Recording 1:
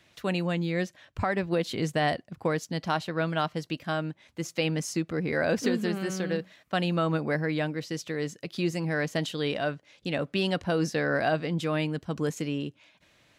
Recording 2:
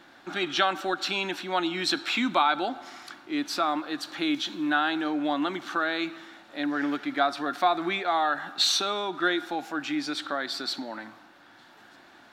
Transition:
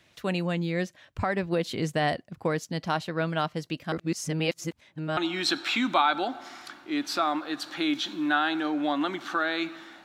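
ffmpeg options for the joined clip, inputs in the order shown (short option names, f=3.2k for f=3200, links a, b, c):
-filter_complex "[0:a]apad=whole_dur=10.04,atrim=end=10.04,asplit=2[a][b];[a]atrim=end=3.922[c];[b]atrim=start=3.918:end=5.172,asetpts=PTS-STARTPTS,areverse[d];[1:a]atrim=start=1.578:end=6.45[e];[c][d]acrossfade=d=0.004:c1=hsin:c2=hsin[f];[f][e]acrossfade=d=0.004:c1=hsin:c2=hsin"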